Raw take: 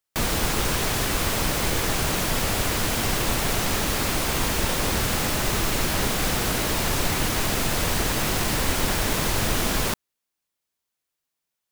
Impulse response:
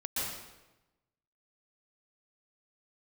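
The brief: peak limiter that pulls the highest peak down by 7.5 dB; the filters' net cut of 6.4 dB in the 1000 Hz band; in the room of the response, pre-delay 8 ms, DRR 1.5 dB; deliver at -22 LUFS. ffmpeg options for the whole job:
-filter_complex "[0:a]equalizer=f=1k:t=o:g=-8.5,alimiter=limit=-18dB:level=0:latency=1,asplit=2[a][b];[1:a]atrim=start_sample=2205,adelay=8[c];[b][c]afir=irnorm=-1:irlink=0,volume=-6.5dB[d];[a][d]amix=inputs=2:normalize=0,volume=3dB"

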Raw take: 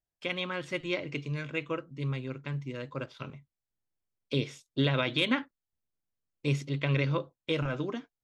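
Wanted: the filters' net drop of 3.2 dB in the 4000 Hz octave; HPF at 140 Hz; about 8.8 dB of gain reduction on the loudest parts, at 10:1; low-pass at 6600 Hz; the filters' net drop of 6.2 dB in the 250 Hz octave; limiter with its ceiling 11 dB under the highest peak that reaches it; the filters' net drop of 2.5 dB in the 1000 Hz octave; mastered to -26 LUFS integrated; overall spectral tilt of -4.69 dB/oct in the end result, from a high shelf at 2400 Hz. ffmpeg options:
-af "highpass=140,lowpass=6.6k,equalizer=f=250:t=o:g=-7.5,equalizer=f=1k:t=o:g=-3.5,highshelf=f=2.4k:g=5.5,equalizer=f=4k:t=o:g=-8.5,acompressor=threshold=-35dB:ratio=10,volume=18dB,alimiter=limit=-14dB:level=0:latency=1"

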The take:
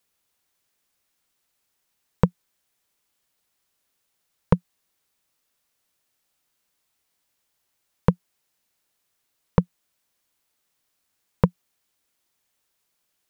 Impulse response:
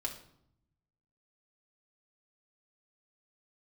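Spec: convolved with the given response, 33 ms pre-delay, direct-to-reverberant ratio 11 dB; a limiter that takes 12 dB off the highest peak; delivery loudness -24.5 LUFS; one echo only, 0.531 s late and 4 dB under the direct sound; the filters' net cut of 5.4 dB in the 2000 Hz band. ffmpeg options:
-filter_complex "[0:a]equalizer=f=2k:t=o:g=-7.5,alimiter=limit=-13.5dB:level=0:latency=1,aecho=1:1:531:0.631,asplit=2[a][b];[1:a]atrim=start_sample=2205,adelay=33[c];[b][c]afir=irnorm=-1:irlink=0,volume=-11.5dB[d];[a][d]amix=inputs=2:normalize=0,volume=13dB"

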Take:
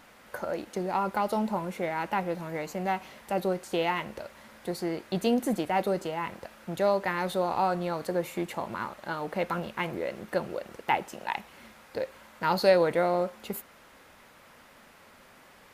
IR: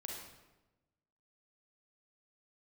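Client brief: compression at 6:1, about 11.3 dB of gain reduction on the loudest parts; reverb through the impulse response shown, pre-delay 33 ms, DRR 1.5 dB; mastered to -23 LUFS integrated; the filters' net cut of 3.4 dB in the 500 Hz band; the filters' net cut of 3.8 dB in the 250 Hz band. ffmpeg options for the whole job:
-filter_complex "[0:a]equalizer=f=250:t=o:g=-4.5,equalizer=f=500:t=o:g=-3,acompressor=threshold=-31dB:ratio=6,asplit=2[a][b];[1:a]atrim=start_sample=2205,adelay=33[c];[b][c]afir=irnorm=-1:irlink=0,volume=0dB[d];[a][d]amix=inputs=2:normalize=0,volume=12dB"

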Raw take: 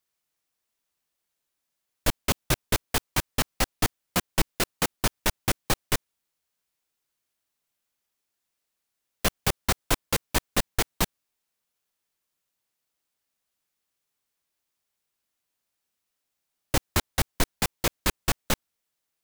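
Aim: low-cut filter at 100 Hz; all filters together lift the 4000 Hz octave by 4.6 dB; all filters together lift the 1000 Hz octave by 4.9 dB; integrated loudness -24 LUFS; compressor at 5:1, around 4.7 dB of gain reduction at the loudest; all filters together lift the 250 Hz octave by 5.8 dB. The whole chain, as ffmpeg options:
-af "highpass=100,equalizer=f=250:t=o:g=7.5,equalizer=f=1k:t=o:g=5.5,equalizer=f=4k:t=o:g=5.5,acompressor=threshold=-22dB:ratio=5,volume=5dB"

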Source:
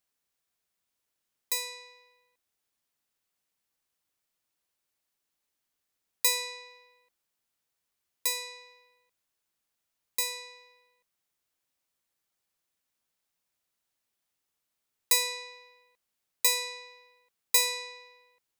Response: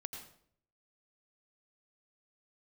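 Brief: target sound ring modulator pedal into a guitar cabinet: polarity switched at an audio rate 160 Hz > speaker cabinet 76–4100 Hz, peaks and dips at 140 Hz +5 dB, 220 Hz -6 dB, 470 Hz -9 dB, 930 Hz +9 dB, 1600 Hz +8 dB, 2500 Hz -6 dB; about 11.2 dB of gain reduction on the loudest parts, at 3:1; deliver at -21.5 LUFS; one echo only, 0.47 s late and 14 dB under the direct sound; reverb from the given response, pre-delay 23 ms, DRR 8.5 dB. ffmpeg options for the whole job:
-filter_complex "[0:a]acompressor=threshold=-35dB:ratio=3,aecho=1:1:470:0.2,asplit=2[a][b];[1:a]atrim=start_sample=2205,adelay=23[c];[b][c]afir=irnorm=-1:irlink=0,volume=-6dB[d];[a][d]amix=inputs=2:normalize=0,aeval=exprs='val(0)*sgn(sin(2*PI*160*n/s))':c=same,highpass=76,equalizer=f=140:t=q:w=4:g=5,equalizer=f=220:t=q:w=4:g=-6,equalizer=f=470:t=q:w=4:g=-9,equalizer=f=930:t=q:w=4:g=9,equalizer=f=1.6k:t=q:w=4:g=8,equalizer=f=2.5k:t=q:w=4:g=-6,lowpass=f=4.1k:w=0.5412,lowpass=f=4.1k:w=1.3066,volume=22.5dB"

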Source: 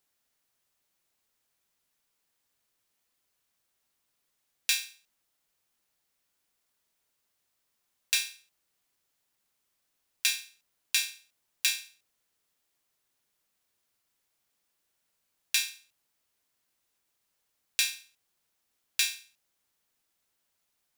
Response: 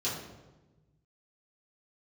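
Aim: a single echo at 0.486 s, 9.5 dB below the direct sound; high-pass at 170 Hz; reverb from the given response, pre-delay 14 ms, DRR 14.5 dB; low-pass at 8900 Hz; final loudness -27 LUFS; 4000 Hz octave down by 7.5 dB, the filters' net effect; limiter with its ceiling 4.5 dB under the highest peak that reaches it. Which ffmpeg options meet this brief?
-filter_complex "[0:a]highpass=170,lowpass=8.9k,equalizer=f=4k:t=o:g=-9,alimiter=limit=-17.5dB:level=0:latency=1,aecho=1:1:486:0.335,asplit=2[a][b];[1:a]atrim=start_sample=2205,adelay=14[c];[b][c]afir=irnorm=-1:irlink=0,volume=-20.5dB[d];[a][d]amix=inputs=2:normalize=0,volume=12dB"

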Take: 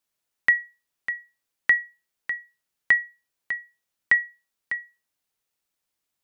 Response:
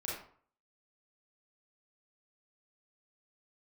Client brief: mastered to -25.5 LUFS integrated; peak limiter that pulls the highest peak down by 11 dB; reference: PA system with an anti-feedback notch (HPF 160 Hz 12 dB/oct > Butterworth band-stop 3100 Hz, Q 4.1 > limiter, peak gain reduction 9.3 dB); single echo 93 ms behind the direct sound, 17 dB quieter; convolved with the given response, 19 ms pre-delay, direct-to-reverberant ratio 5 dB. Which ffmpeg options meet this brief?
-filter_complex "[0:a]alimiter=limit=-19.5dB:level=0:latency=1,aecho=1:1:93:0.141,asplit=2[a][b];[1:a]atrim=start_sample=2205,adelay=19[c];[b][c]afir=irnorm=-1:irlink=0,volume=-7dB[d];[a][d]amix=inputs=2:normalize=0,highpass=160,asuperstop=centerf=3100:order=8:qfactor=4.1,volume=11dB,alimiter=limit=-17dB:level=0:latency=1"

